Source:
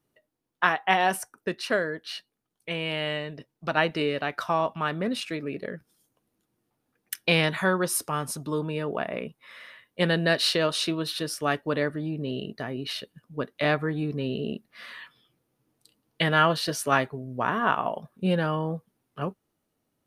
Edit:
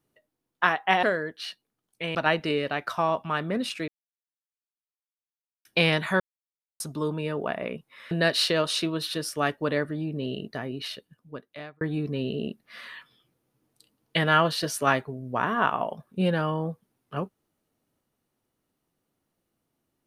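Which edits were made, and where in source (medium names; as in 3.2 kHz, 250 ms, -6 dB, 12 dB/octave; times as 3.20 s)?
1.03–1.70 s: delete
2.82–3.66 s: delete
5.39–7.16 s: mute
7.71–8.31 s: mute
9.62–10.16 s: delete
12.65–13.86 s: fade out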